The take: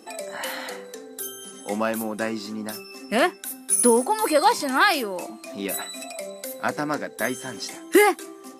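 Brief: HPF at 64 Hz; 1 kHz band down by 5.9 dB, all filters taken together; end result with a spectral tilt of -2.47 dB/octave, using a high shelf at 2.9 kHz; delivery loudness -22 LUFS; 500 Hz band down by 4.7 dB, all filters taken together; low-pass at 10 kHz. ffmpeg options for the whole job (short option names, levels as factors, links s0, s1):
-af "highpass=64,lowpass=10000,equalizer=f=500:t=o:g=-4.5,equalizer=f=1000:t=o:g=-7,highshelf=f=2900:g=6.5,volume=1.41"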